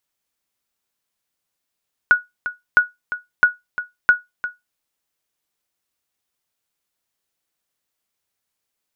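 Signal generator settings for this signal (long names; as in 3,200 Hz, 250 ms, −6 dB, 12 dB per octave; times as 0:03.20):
ping with an echo 1,460 Hz, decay 0.18 s, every 0.66 s, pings 4, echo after 0.35 s, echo −13 dB −3.5 dBFS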